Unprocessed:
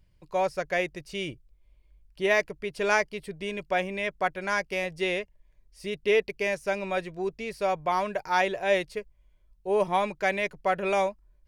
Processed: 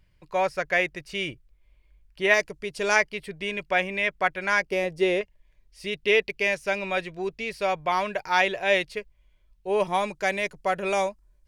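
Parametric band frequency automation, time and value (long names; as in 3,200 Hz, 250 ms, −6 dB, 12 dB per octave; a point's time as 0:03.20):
parametric band +7 dB 1.8 octaves
1,900 Hz
from 0:02.34 6,800 Hz
from 0:02.96 2,200 Hz
from 0:04.62 380 Hz
from 0:05.21 2,800 Hz
from 0:09.87 7,900 Hz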